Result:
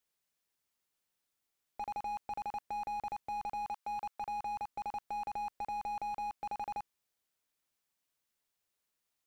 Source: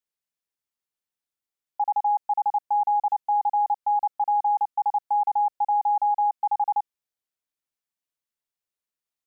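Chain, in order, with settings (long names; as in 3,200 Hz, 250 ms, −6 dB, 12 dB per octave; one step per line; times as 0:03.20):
0:03.68–0:04.67: high-pass filter 710 Hz → 610 Hz 12 dB per octave
slew-rate limiting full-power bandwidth 6.8 Hz
level +5.5 dB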